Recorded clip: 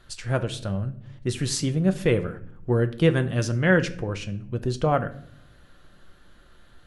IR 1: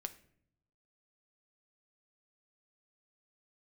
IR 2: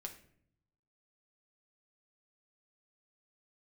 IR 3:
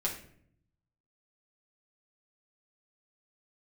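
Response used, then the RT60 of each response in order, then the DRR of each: 1; 0.65, 0.60, 0.60 seconds; 7.5, 2.0, −4.0 decibels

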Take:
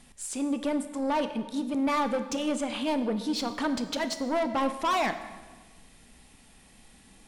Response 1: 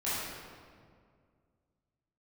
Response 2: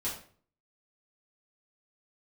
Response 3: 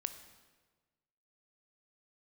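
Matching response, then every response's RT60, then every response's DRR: 3; 2.1, 0.45, 1.4 seconds; −12.0, −8.5, 9.5 decibels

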